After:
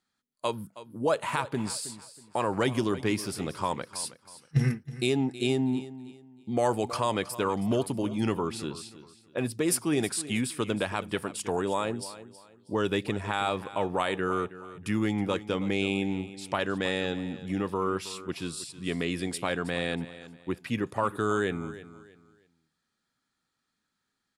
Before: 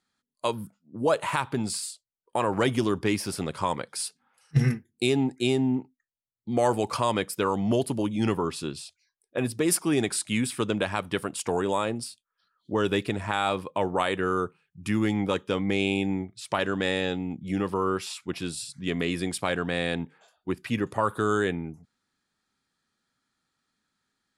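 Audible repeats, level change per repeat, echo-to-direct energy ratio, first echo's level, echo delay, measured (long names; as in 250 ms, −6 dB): 2, −11.0 dB, −15.0 dB, −15.5 dB, 320 ms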